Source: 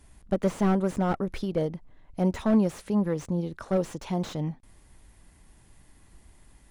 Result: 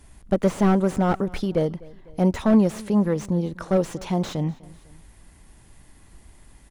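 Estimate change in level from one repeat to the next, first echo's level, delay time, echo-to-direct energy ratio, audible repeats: -5.0 dB, -22.5 dB, 0.25 s, -21.5 dB, 2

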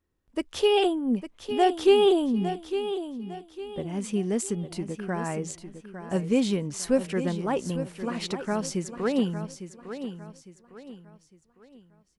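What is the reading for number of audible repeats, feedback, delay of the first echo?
3, 36%, 0.855 s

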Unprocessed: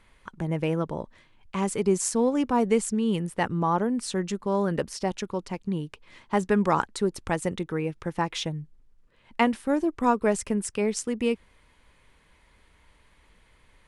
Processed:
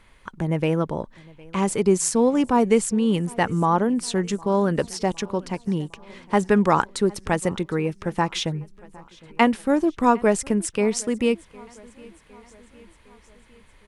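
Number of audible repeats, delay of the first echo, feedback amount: 3, 0.759 s, 57%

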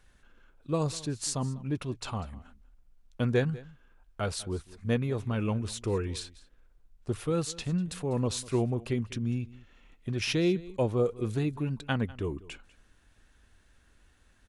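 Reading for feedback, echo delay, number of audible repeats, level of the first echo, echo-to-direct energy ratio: no steady repeat, 0.197 s, 1, -20.0 dB, -20.0 dB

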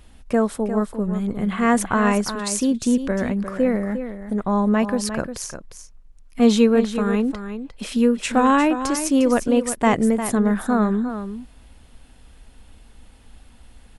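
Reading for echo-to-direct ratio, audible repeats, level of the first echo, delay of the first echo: -10.0 dB, 1, -10.0 dB, 0.353 s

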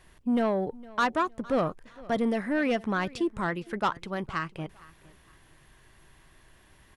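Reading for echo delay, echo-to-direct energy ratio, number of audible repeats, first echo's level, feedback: 0.46 s, -21.0 dB, 2, -21.5 dB, 27%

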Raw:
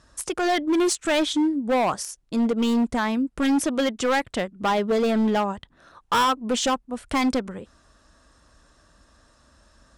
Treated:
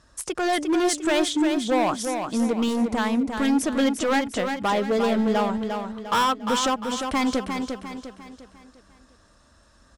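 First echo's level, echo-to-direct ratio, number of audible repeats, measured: -6.0 dB, -5.0 dB, 4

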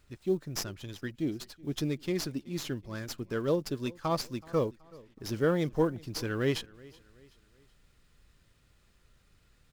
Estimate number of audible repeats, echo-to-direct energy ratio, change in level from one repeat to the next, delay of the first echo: 2, -22.0 dB, -7.5 dB, 0.376 s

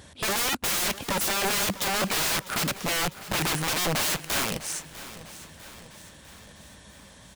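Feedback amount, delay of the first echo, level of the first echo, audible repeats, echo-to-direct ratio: 54%, 0.65 s, -16.0 dB, 4, -14.5 dB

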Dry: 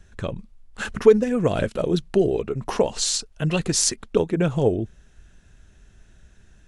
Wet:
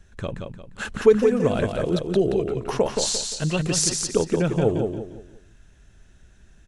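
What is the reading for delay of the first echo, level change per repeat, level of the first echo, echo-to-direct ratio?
0.175 s, -9.5 dB, -5.0 dB, -4.5 dB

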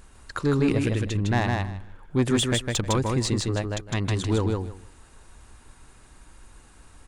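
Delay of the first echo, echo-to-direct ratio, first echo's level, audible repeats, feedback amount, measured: 0.156 s, -3.0 dB, -3.0 dB, 3, 18%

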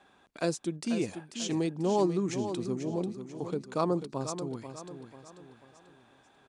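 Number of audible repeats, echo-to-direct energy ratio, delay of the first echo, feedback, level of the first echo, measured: 4, -8.5 dB, 0.49 s, 41%, -9.5 dB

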